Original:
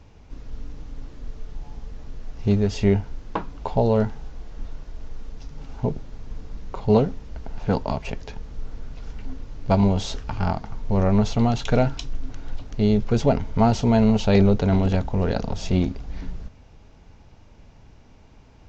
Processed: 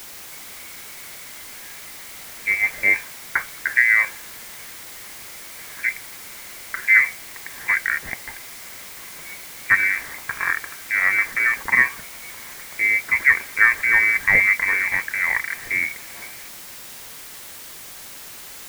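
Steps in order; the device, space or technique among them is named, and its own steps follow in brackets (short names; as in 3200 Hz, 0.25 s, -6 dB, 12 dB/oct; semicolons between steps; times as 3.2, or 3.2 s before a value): scrambled radio voice (BPF 340–2800 Hz; inverted band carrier 2500 Hz; white noise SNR 15 dB); gain +6 dB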